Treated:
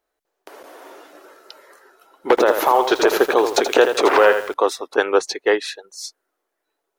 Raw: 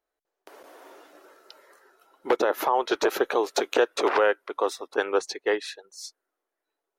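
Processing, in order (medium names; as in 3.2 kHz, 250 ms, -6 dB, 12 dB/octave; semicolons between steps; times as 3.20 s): 2.29–4.54 s: bit-crushed delay 81 ms, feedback 35%, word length 7-bit, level -7.5 dB; trim +7.5 dB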